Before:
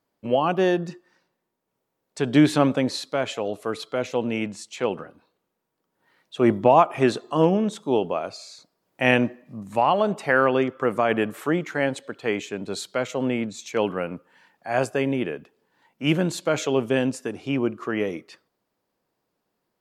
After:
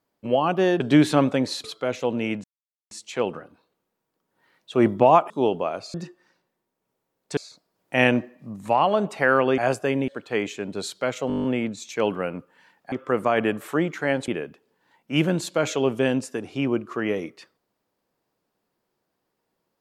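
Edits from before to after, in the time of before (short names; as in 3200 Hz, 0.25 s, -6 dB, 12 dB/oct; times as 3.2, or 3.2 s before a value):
0.8–2.23 move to 8.44
3.07–3.75 cut
4.55 insert silence 0.47 s
6.94–7.8 cut
10.65–12.01 swap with 14.69–15.19
13.21 stutter 0.02 s, 9 plays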